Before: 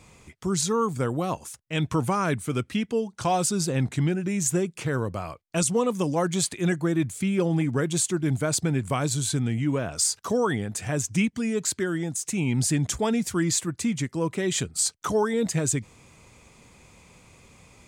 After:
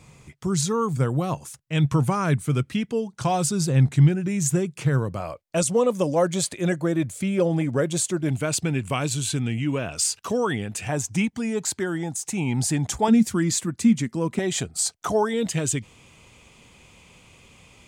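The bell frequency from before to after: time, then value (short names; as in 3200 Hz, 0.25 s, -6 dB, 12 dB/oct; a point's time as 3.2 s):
bell +10.5 dB 0.41 oct
140 Hz
from 5.2 s 570 Hz
from 8.29 s 2700 Hz
from 10.88 s 820 Hz
from 13.08 s 220 Hz
from 14.39 s 710 Hz
from 15.29 s 3000 Hz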